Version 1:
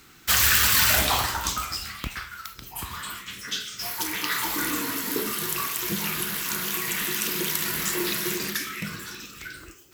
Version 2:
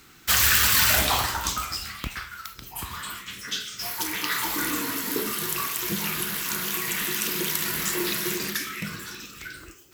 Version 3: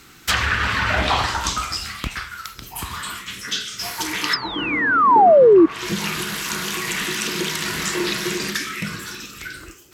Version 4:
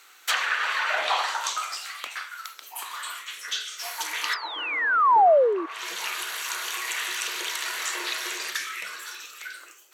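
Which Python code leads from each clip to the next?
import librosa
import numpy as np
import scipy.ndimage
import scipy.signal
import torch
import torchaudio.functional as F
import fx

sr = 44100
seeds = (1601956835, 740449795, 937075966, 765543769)

y1 = x
y2 = fx.spec_paint(y1, sr, seeds[0], shape='fall', start_s=4.33, length_s=1.33, low_hz=310.0, high_hz=5300.0, level_db=-15.0)
y2 = fx.env_lowpass_down(y2, sr, base_hz=990.0, full_db=-13.0)
y2 = y2 * 10.0 ** (5.5 / 20.0)
y3 = scipy.signal.sosfilt(scipy.signal.butter(4, 540.0, 'highpass', fs=sr, output='sos'), y2)
y3 = fx.notch(y3, sr, hz=5100.0, q=10.0)
y3 = y3 * 10.0 ** (-4.5 / 20.0)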